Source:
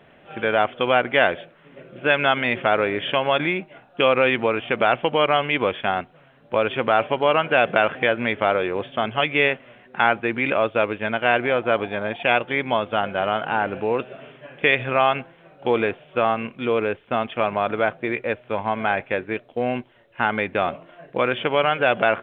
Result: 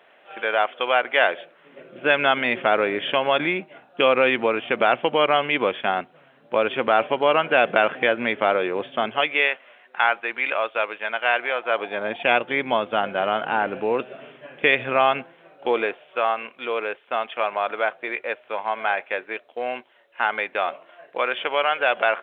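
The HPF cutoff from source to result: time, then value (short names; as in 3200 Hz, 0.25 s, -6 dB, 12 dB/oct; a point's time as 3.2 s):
1.11 s 550 Hz
2.06 s 200 Hz
9.03 s 200 Hz
9.49 s 710 Hz
11.65 s 710 Hz
12.16 s 190 Hz
15.13 s 190 Hz
16.18 s 580 Hz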